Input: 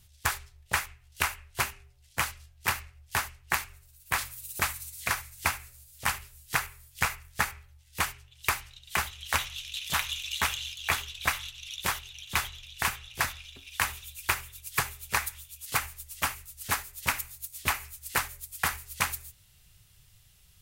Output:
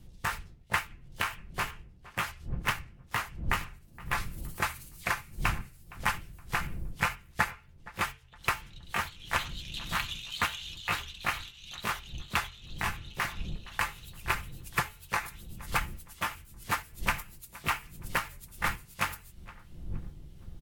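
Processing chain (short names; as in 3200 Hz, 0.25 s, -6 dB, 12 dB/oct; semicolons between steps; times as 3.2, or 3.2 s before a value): repeated pitch sweeps +2 st, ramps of 0.458 s; wind noise 87 Hz -44 dBFS; high shelf 3600 Hz -11 dB; comb 5.8 ms, depth 35%; tape echo 0.467 s, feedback 39%, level -18 dB, low-pass 2400 Hz; gain +1.5 dB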